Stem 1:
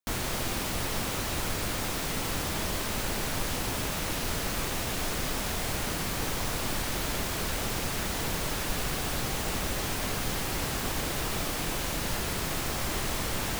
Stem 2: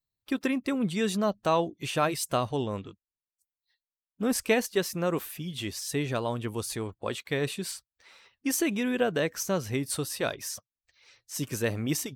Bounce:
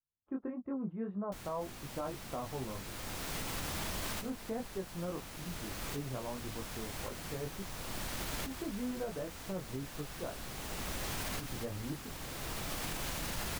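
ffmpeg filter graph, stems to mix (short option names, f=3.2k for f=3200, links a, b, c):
-filter_complex "[0:a]adelay=1250,volume=0.5dB,asplit=2[a][b];[b]volume=-21dB[c];[1:a]lowpass=f=1.2k:w=0.5412,lowpass=f=1.2k:w=1.3066,flanger=delay=20:depth=3.3:speed=1.7,volume=-6.5dB,asplit=2[d][e];[e]apad=whole_len=654820[f];[a][f]sidechaincompress=threshold=-52dB:ratio=12:attack=43:release=1030[g];[c]aecho=0:1:289:1[h];[g][d][h]amix=inputs=3:normalize=0,adynamicequalizer=threshold=0.00316:dfrequency=410:dqfactor=1.7:tfrequency=410:tqfactor=1.7:attack=5:release=100:ratio=0.375:range=2:mode=cutabove:tftype=bell,alimiter=level_in=4.5dB:limit=-24dB:level=0:latency=1:release=99,volume=-4.5dB"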